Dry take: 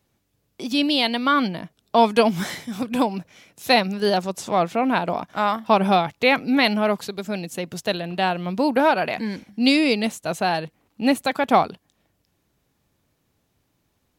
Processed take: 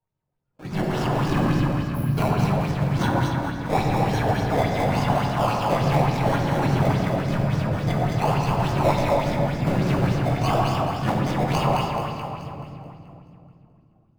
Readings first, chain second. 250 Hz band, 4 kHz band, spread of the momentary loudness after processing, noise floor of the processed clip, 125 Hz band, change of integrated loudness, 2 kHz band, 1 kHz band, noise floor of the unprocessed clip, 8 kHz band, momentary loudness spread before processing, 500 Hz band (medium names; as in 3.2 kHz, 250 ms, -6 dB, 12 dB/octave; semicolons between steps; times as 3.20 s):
-2.0 dB, -8.5 dB, 6 LU, -61 dBFS, +13.5 dB, -1.5 dB, -5.5 dB, -2.0 dB, -71 dBFS, -2.0 dB, 11 LU, -2.5 dB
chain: whisper effect; ten-band graphic EQ 125 Hz +9 dB, 250 Hz -9 dB, 500 Hz -10 dB, 2 kHz -4 dB, 4 kHz -6 dB; decimation with a swept rate 25×, swing 60% 0.91 Hz; spectral noise reduction 14 dB; spectral selection erased 1.62–2.17 s, 260–10000 Hz; gain riding within 4 dB 0.5 s; treble shelf 3.9 kHz -8.5 dB; two-band feedback delay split 1.4 kHz, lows 134 ms, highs 215 ms, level -3 dB; simulated room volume 120 m³, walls hard, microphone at 0.56 m; sweeping bell 3.5 Hz 540–6100 Hz +8 dB; trim -4.5 dB